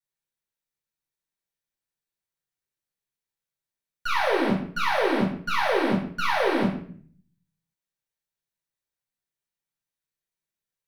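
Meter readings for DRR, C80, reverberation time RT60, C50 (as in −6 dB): −5.5 dB, 9.0 dB, 0.55 s, 5.0 dB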